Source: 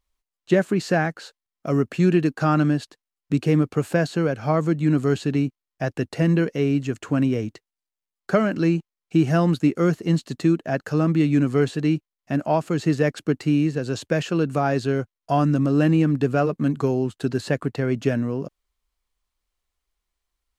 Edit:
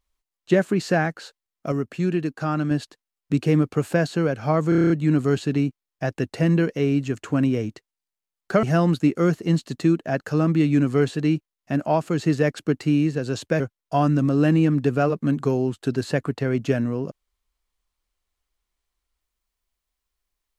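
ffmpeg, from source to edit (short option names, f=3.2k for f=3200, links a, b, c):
-filter_complex "[0:a]asplit=12[a][b][c][d][e][f][g][h][i][j][k][l];[a]atrim=end=1.722[m];[b]atrim=start=1.718:end=2.712,asetpts=PTS-STARTPTS,volume=-5dB[n];[c]atrim=start=2.708:end=4.722[o];[d]atrim=start=4.688:end=4.722[p];[e]atrim=start=4.688:end=4.722[q];[f]atrim=start=4.688:end=4.722[r];[g]atrim=start=4.688:end=4.722[s];[h]atrim=start=4.688:end=4.722[t];[i]atrim=start=4.688:end=4.722[u];[j]atrim=start=4.688:end=8.422[v];[k]atrim=start=9.228:end=14.202[w];[l]atrim=start=14.968[x];[m][n]acrossfade=d=0.004:c1=hsin:c2=hsin[y];[y][o]acrossfade=d=0.004:c1=hsin:c2=hsin[z];[z][p]acrossfade=d=0.004:c1=hsin:c2=hsin[aa];[aa][q]acrossfade=d=0.004:c1=hsin:c2=hsin[ab];[ab][r]acrossfade=d=0.004:c1=hsin:c2=hsin[ac];[ac][s]acrossfade=d=0.004:c1=hsin:c2=hsin[ad];[ad][t]acrossfade=d=0.004:c1=hsin:c2=hsin[ae];[ae][u]acrossfade=d=0.004:c1=hsin:c2=hsin[af];[af][v]acrossfade=d=0.004:c1=hsin:c2=hsin[ag];[ag][w]acrossfade=d=0.004:c1=hsin:c2=hsin[ah];[ah][x]acrossfade=d=0.004:c1=hsin:c2=hsin"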